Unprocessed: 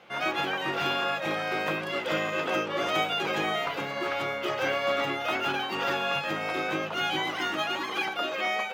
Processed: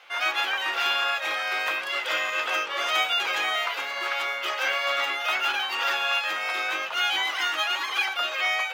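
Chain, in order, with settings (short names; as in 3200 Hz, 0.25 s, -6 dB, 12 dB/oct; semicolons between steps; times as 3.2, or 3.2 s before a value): Bessel high-pass 1300 Hz, order 2; gain +6.5 dB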